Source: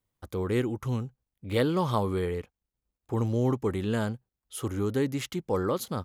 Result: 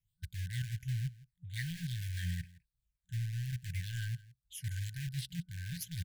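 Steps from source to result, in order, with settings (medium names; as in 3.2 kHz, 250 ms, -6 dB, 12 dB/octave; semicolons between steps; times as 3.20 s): phase shifter stages 8, 1.2 Hz, lowest notch 680–2200 Hz; reverse; compression 12:1, threshold -34 dBFS, peak gain reduction 13.5 dB; reverse; rotary cabinet horn 6.7 Hz, later 0.8 Hz, at 2.53 s; in parallel at -8 dB: word length cut 6-bit, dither none; on the sum: delay 166 ms -20.5 dB; FFT band-reject 180–1500 Hz; trim +2 dB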